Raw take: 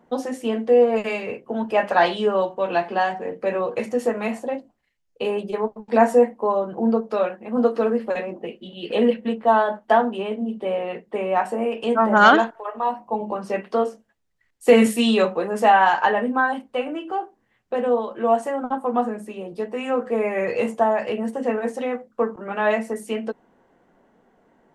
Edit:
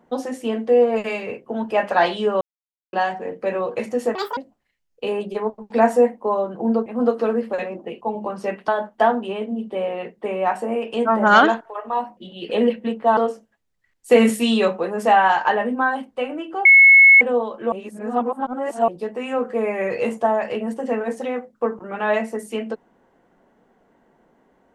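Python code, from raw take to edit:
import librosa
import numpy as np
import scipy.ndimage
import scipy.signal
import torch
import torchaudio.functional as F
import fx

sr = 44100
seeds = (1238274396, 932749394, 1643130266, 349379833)

y = fx.edit(x, sr, fx.silence(start_s=2.41, length_s=0.52),
    fx.speed_span(start_s=4.15, length_s=0.4, speed=1.81),
    fx.cut(start_s=7.04, length_s=0.39),
    fx.swap(start_s=8.58, length_s=1.0, other_s=13.07, other_length_s=0.67),
    fx.bleep(start_s=17.22, length_s=0.56, hz=2190.0, db=-6.0),
    fx.reverse_span(start_s=18.29, length_s=1.16), tone=tone)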